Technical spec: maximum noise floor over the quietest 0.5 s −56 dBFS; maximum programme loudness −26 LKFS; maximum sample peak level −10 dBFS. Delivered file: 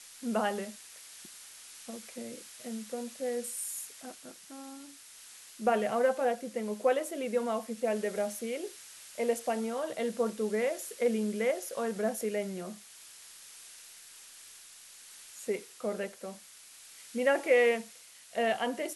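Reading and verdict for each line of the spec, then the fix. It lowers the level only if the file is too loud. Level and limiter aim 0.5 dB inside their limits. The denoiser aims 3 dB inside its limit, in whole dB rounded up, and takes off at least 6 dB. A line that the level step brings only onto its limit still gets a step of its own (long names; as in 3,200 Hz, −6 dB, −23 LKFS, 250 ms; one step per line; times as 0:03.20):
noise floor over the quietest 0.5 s −53 dBFS: out of spec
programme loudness −32.5 LKFS: in spec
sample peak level −14.0 dBFS: in spec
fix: broadband denoise 6 dB, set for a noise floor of −53 dBFS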